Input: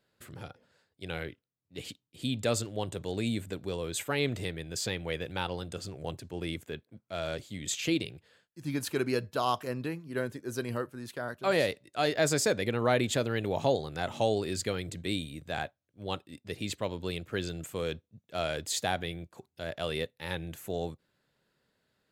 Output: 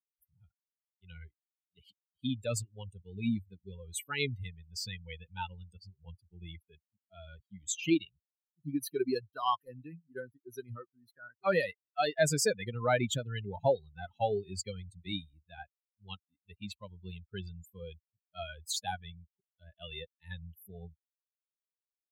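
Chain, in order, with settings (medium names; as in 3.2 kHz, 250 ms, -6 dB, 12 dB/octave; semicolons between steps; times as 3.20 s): expander on every frequency bin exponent 3; trim +4.5 dB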